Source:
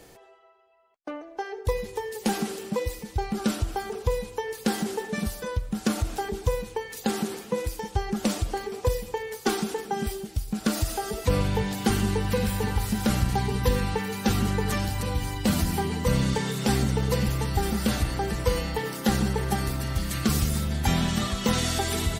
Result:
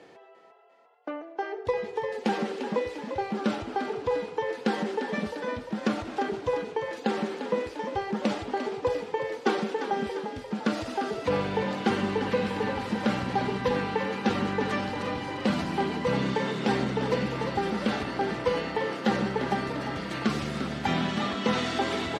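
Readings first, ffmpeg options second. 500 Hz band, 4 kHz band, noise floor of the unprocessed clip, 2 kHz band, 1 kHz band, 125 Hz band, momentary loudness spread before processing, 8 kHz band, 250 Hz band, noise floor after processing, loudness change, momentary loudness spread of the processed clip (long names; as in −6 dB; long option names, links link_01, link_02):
+1.5 dB, −3.5 dB, −47 dBFS, +1.0 dB, +1.5 dB, −9.0 dB, 6 LU, −14.0 dB, −1.5 dB, −47 dBFS, −2.0 dB, 5 LU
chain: -filter_complex "[0:a]highpass=220,lowpass=3100,asplit=7[link_01][link_02][link_03][link_04][link_05][link_06][link_07];[link_02]adelay=348,afreqshift=39,volume=-9dB[link_08];[link_03]adelay=696,afreqshift=78,volume=-14.2dB[link_09];[link_04]adelay=1044,afreqshift=117,volume=-19.4dB[link_10];[link_05]adelay=1392,afreqshift=156,volume=-24.6dB[link_11];[link_06]adelay=1740,afreqshift=195,volume=-29.8dB[link_12];[link_07]adelay=2088,afreqshift=234,volume=-35dB[link_13];[link_01][link_08][link_09][link_10][link_11][link_12][link_13]amix=inputs=7:normalize=0,volume=1dB"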